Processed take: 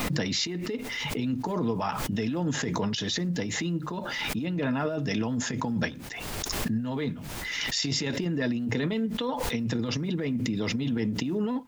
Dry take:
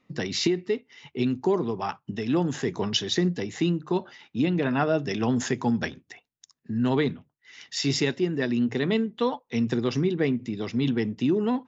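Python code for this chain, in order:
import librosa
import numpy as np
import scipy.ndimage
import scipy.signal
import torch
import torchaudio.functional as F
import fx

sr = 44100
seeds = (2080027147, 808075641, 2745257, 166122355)

y = fx.over_compress(x, sr, threshold_db=-26.0, ratio=-0.5)
y = fx.notch_comb(y, sr, f0_hz=380.0)
y = fx.dmg_noise_colour(y, sr, seeds[0], colour='pink', level_db=-68.0)
y = fx.pre_swell(y, sr, db_per_s=20.0)
y = y * 10.0 ** (-1.5 / 20.0)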